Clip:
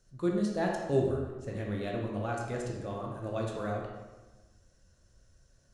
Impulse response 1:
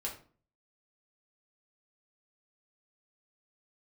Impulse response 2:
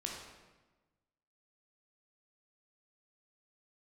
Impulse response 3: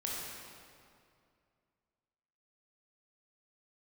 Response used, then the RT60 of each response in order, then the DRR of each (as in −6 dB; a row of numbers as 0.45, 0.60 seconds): 2; 0.45, 1.2, 2.4 seconds; −3.0, −1.0, −4.5 decibels